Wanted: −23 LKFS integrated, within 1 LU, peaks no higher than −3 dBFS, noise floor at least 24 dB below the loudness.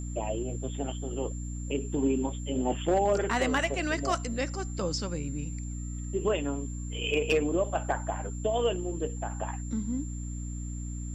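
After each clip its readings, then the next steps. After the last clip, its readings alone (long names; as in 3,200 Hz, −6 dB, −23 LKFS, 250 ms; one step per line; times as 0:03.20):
mains hum 60 Hz; hum harmonics up to 300 Hz; level of the hum −33 dBFS; interfering tone 7,300 Hz; level of the tone −46 dBFS; integrated loudness −31.0 LKFS; sample peak −16.0 dBFS; target loudness −23.0 LKFS
→ mains-hum notches 60/120/180/240/300 Hz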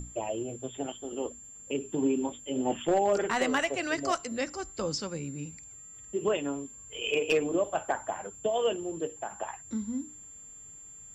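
mains hum none found; interfering tone 7,300 Hz; level of the tone −46 dBFS
→ notch filter 7,300 Hz, Q 30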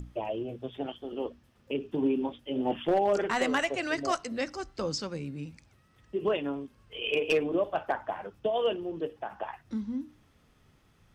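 interfering tone none found; integrated loudness −31.5 LKFS; sample peak −17.5 dBFS; target loudness −23.0 LKFS
→ level +8.5 dB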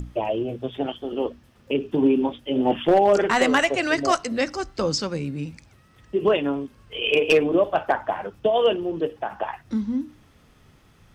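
integrated loudness −23.0 LKFS; sample peak −9.0 dBFS; background noise floor −56 dBFS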